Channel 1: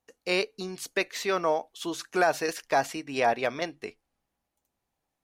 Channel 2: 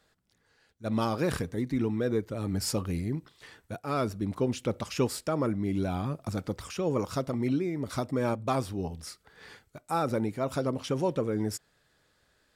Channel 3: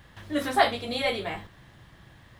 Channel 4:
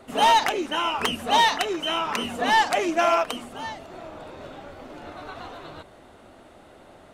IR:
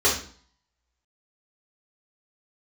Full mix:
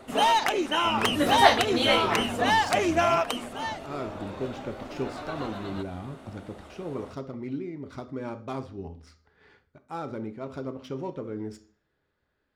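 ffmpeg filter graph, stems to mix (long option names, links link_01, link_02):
-filter_complex "[0:a]volume=-19.5dB[link_01];[1:a]adynamicsmooth=sensitivity=6:basefreq=2800,volume=-7dB,asplit=2[link_02][link_03];[link_03]volume=-24dB[link_04];[2:a]adelay=850,volume=2.5dB[link_05];[3:a]acompressor=threshold=-20dB:ratio=6,volume=1dB[link_06];[4:a]atrim=start_sample=2205[link_07];[link_04][link_07]afir=irnorm=-1:irlink=0[link_08];[link_01][link_02][link_05][link_06][link_08]amix=inputs=5:normalize=0"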